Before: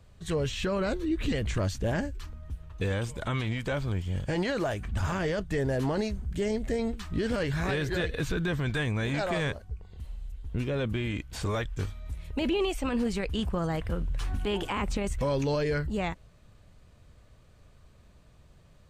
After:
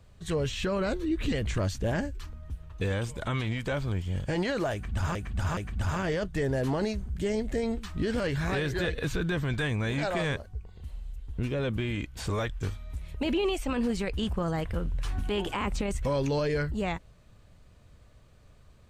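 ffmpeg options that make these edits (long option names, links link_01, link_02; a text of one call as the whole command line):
ffmpeg -i in.wav -filter_complex "[0:a]asplit=3[link_01][link_02][link_03];[link_01]atrim=end=5.152[link_04];[link_02]atrim=start=4.728:end=5.152[link_05];[link_03]atrim=start=4.728[link_06];[link_04][link_05]acrossfade=duration=0.004:curve1=hsin:curve2=hsin[link_07];[link_07][link_06]acrossfade=duration=0.004:curve1=hsin:curve2=hsin" out.wav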